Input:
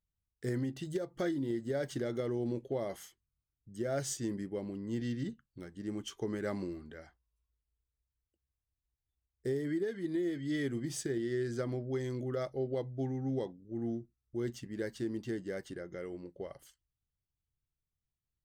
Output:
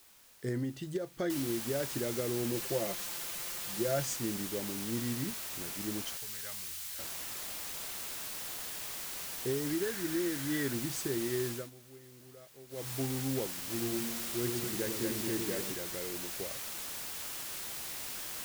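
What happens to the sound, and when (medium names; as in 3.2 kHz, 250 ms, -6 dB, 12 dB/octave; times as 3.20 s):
1.30 s: noise floor step -60 dB -41 dB
2.53–4.06 s: comb 5.8 ms, depth 59%
6.17–6.99 s: amplifier tone stack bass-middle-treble 10-0-10
9.81–10.75 s: peaking EQ 1.6 kHz +6.5 dB 0.42 oct
11.47–12.92 s: dip -19 dB, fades 0.23 s
13.47–15.72 s: two-band feedback delay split 460 Hz, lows 100 ms, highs 230 ms, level -3.5 dB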